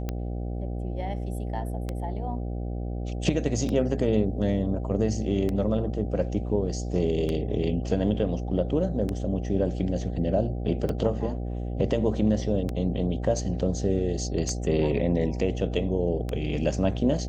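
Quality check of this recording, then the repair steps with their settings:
buzz 60 Hz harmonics 13 -31 dBFS
tick 33 1/3 rpm -17 dBFS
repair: de-click; de-hum 60 Hz, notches 13

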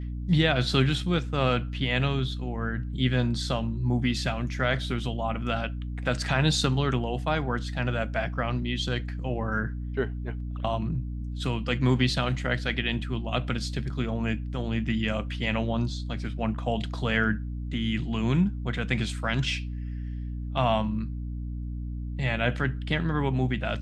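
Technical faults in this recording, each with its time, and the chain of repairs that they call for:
hum 60 Hz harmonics 5 -33 dBFS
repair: de-hum 60 Hz, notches 5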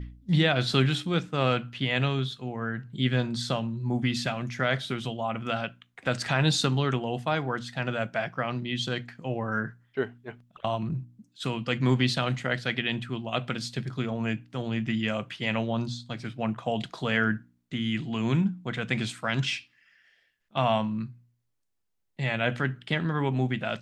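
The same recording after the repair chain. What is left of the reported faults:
nothing left

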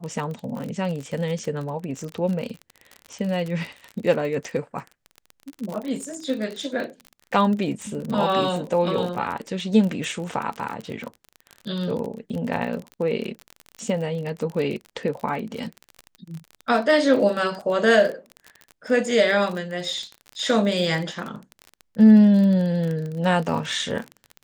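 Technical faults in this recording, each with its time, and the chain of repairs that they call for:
crackle 35 per s -28 dBFS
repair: de-click

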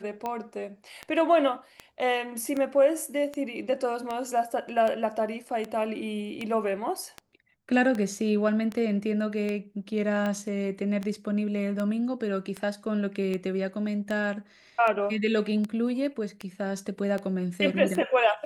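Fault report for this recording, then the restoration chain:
tick 78 rpm -19 dBFS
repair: de-click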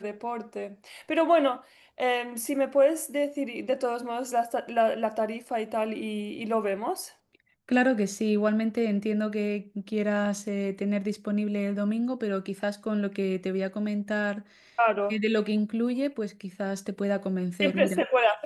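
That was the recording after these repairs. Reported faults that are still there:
nothing left

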